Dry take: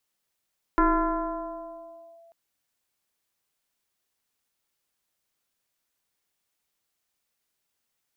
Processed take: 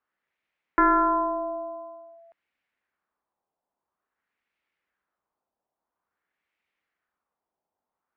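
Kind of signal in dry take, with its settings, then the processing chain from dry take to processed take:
two-operator FM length 1.54 s, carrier 671 Hz, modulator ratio 0.52, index 2.1, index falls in 1.43 s linear, decay 2.54 s, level −16 dB
high-pass filter 61 Hz 6 dB per octave
parametric band 120 Hz −11.5 dB 0.35 octaves
auto-filter low-pass sine 0.49 Hz 800–2,300 Hz

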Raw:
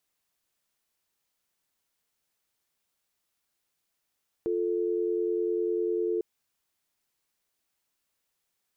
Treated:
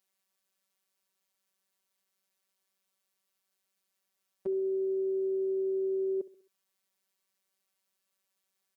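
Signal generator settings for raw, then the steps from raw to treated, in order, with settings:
call progress tone dial tone, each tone −28 dBFS 1.75 s
high-pass filter 110 Hz
phases set to zero 192 Hz
repeating echo 66 ms, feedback 44%, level −17.5 dB

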